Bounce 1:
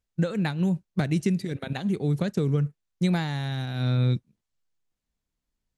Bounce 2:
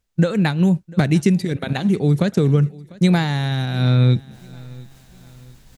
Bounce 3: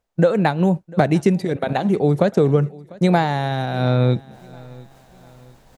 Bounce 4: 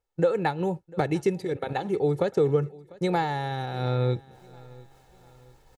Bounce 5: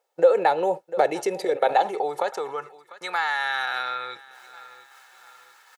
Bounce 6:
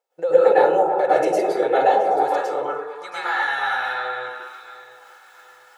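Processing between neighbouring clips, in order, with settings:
reverse; upward compressor, threshold -36 dBFS; reverse; feedback echo 0.697 s, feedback 43%, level -22.5 dB; gain +8.5 dB
bell 680 Hz +14.5 dB 2.1 oct; gain -5.5 dB
comb 2.3 ms, depth 58%; gain -8.5 dB
in parallel at +1 dB: negative-ratio compressor -31 dBFS, ratio -1; on the sum: high-pass sweep 580 Hz -> 1400 Hz, 1.51–3.32
delay with a stepping band-pass 0.111 s, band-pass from 340 Hz, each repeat 0.7 oct, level -0.5 dB; plate-style reverb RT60 0.53 s, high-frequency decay 0.5×, pre-delay 95 ms, DRR -9 dB; gain -7.5 dB

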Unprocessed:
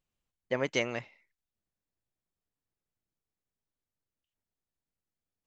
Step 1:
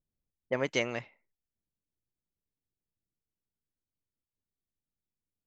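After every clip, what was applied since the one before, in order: low-pass opened by the level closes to 420 Hz, open at -28.5 dBFS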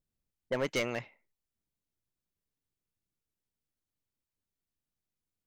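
overloaded stage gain 26 dB; gain +1 dB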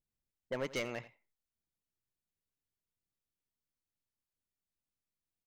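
echo 86 ms -17.5 dB; gain -5.5 dB

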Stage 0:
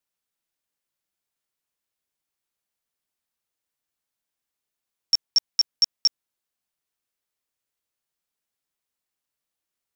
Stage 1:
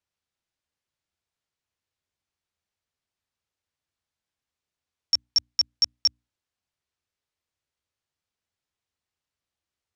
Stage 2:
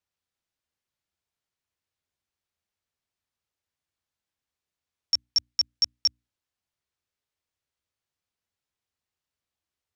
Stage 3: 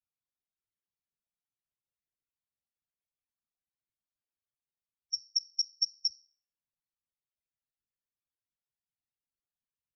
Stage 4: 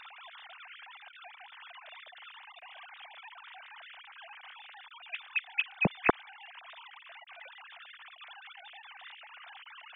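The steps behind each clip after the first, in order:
LPF 6400 Hz 12 dB/oct; bell 80 Hz +13 dB 1.2 oct; notches 60/120/180/240/300 Hz
dynamic EQ 780 Hz, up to -5 dB, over -54 dBFS, Q 1.3; gain -1.5 dB
resonator 170 Hz, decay 0.44 s, harmonics all, mix 60%; loudest bins only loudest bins 16; whisperiser
sine-wave speech; gain +3 dB

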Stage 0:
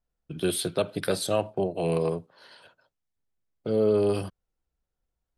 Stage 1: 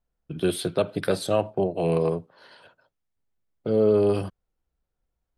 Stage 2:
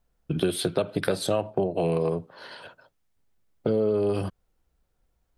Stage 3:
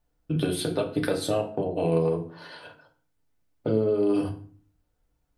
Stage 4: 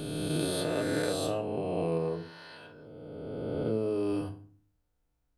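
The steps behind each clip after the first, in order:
high shelf 3400 Hz -8 dB; gain +3 dB
compressor 5:1, threshold -30 dBFS, peak gain reduction 13 dB; gain +8 dB
FDN reverb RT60 0.45 s, low-frequency decay 1.5×, high-frequency decay 0.75×, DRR 1.5 dB; gain -3.5 dB
spectral swells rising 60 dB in 2.50 s; gain -8.5 dB

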